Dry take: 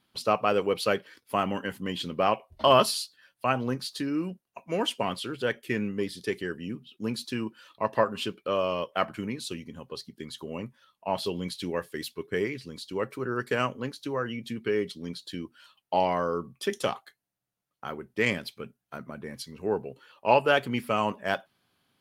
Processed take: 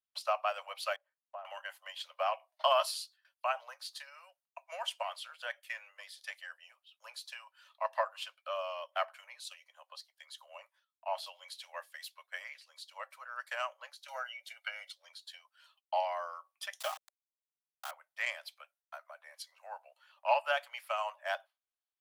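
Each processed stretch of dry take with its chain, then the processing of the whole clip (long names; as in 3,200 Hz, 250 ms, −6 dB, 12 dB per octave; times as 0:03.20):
0:00.96–0:01.45: resonant band-pass 280 Hz, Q 1.4 + one half of a high-frequency compander decoder only
0:14.08–0:14.93: comb filter 1.4 ms, depth 90% + multiband upward and downward compressor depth 70%
0:16.80–0:17.91: variable-slope delta modulation 64 kbit/s + comb filter 6.4 ms, depth 56% + bit-depth reduction 6 bits, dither none
whole clip: transient designer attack +4 dB, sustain 0 dB; noise gate with hold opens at −47 dBFS; Butterworth high-pass 580 Hz 96 dB per octave; level −8.5 dB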